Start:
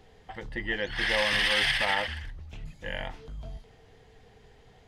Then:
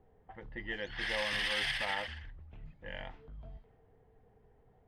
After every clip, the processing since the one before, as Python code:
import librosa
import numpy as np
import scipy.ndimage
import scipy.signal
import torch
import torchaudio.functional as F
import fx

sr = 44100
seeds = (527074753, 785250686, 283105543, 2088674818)

y = fx.env_lowpass(x, sr, base_hz=970.0, full_db=-24.5)
y = y * 10.0 ** (-8.5 / 20.0)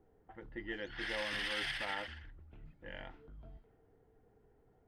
y = fx.small_body(x, sr, hz=(320.0, 1400.0), ring_ms=25, db=9)
y = y * 10.0 ** (-5.0 / 20.0)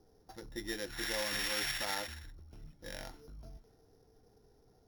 y = np.r_[np.sort(x[:len(x) // 8 * 8].reshape(-1, 8), axis=1).ravel(), x[len(x) // 8 * 8:]]
y = y * 10.0 ** (2.5 / 20.0)